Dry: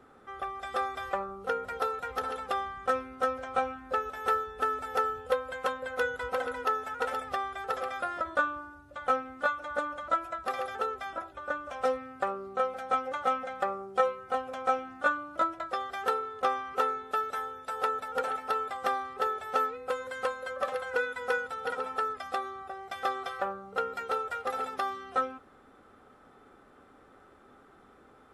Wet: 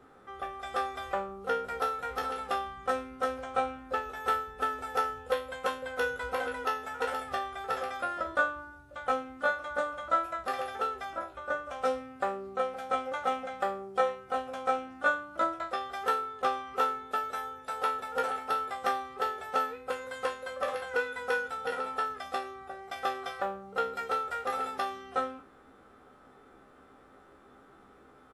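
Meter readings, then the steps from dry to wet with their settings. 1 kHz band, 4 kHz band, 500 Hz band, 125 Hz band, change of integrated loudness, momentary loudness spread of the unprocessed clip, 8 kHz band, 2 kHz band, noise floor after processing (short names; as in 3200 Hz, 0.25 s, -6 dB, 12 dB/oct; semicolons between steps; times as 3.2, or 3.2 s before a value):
-1.0 dB, +1.5 dB, -1.0 dB, n/a, -0.5 dB, 5 LU, +1.5 dB, +0.5 dB, -57 dBFS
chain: spectral trails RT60 0.37 s; doubler 15 ms -9 dB; gain -1.5 dB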